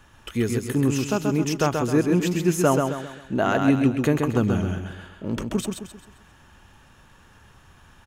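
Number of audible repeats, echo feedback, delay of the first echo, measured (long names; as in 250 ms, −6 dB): 4, 39%, 132 ms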